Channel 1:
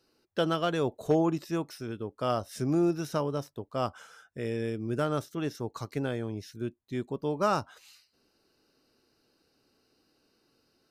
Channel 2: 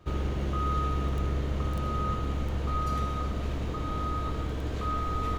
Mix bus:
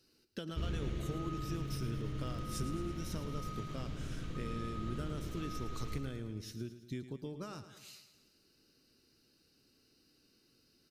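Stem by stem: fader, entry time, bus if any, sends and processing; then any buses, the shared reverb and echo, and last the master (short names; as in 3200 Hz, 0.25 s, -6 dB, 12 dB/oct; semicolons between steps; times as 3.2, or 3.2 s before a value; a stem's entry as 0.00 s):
+3.0 dB, 0.00 s, no send, echo send -12 dB, compressor 8:1, threshold -38 dBFS, peak gain reduction 17.5 dB
0.0 dB, 0.50 s, no send, echo send -7.5 dB, high shelf 11000 Hz -11 dB; limiter -22 dBFS, peak gain reduction 4.5 dB; auto duck -12 dB, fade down 1.85 s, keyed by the first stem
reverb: off
echo: feedback echo 0.11 s, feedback 55%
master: bell 800 Hz -13.5 dB 1.9 oct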